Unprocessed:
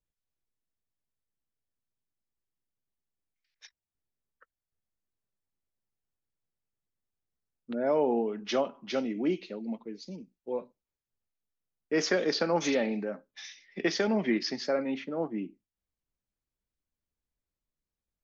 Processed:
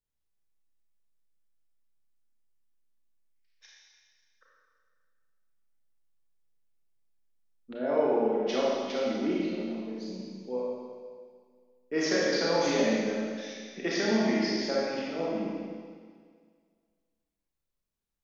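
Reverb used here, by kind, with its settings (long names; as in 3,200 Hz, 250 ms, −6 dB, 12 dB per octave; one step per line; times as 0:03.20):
four-comb reverb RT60 1.9 s, combs from 28 ms, DRR −5.5 dB
level −5 dB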